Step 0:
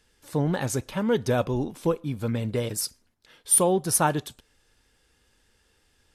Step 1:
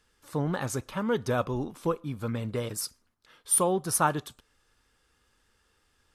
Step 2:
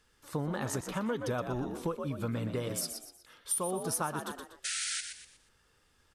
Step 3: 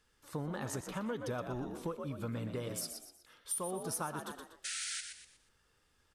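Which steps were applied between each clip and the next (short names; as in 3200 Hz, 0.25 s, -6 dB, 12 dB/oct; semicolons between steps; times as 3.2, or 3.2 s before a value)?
bell 1200 Hz +8.5 dB 0.54 oct; gain -4.5 dB
painted sound noise, 4.64–5.01, 1300–10000 Hz -34 dBFS; on a send: frequency-shifting echo 0.121 s, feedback 36%, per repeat +60 Hz, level -9 dB; on the sum: compressor 6:1, threshold -30 dBFS, peak gain reduction 11.5 dB
in parallel at -11 dB: soft clip -30 dBFS, distortion -14 dB; on the sum: reverb RT60 0.40 s, pre-delay 40 ms, DRR 18 dB; gain -6.5 dB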